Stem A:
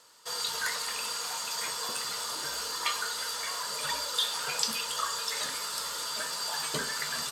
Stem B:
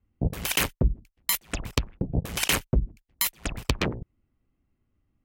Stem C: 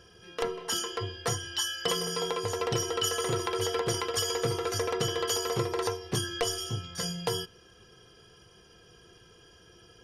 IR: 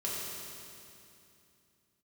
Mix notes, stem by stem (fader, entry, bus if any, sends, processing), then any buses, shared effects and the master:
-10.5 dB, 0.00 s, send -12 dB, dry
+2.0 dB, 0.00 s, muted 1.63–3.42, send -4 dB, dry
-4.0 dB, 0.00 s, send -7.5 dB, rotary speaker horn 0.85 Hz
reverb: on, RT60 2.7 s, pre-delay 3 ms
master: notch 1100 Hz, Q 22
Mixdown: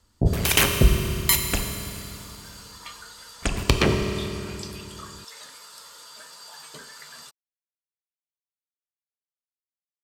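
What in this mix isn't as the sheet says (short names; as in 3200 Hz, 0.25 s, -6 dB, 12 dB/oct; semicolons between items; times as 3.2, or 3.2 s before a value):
stem A: send off; stem C: muted; master: missing notch 1100 Hz, Q 22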